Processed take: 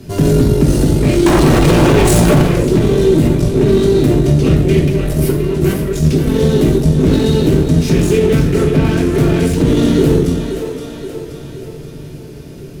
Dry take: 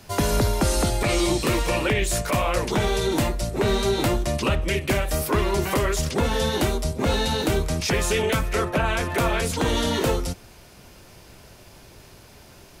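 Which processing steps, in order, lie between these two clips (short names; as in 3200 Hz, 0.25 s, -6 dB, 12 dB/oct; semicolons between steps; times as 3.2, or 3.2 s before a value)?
4.78–6.27 negative-ratio compressor -26 dBFS, ratio -0.5; split-band echo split 320 Hz, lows 0.108 s, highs 0.527 s, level -10.5 dB; one-sided clip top -32 dBFS; de-hum 45.14 Hz, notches 6; wavefolder -18 dBFS; resonant low shelf 530 Hz +13 dB, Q 1.5; 1.26–2.42 sample leveller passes 5; bell 160 Hz +3.5 dB 0.77 oct; reverb, pre-delay 3 ms, DRR 0 dB; maximiser +2 dB; gain -1 dB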